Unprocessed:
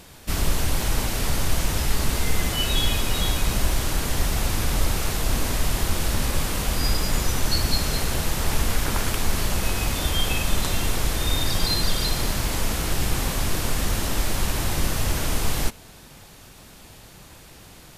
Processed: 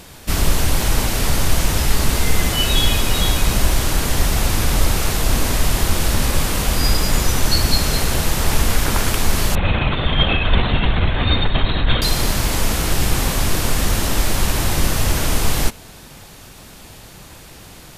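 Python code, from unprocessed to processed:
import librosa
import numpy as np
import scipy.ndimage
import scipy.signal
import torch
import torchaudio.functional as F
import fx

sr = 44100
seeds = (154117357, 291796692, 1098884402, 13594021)

y = fx.lpc_vocoder(x, sr, seeds[0], excitation='whisper', order=16, at=(9.55, 12.02))
y = y * librosa.db_to_amplitude(6.0)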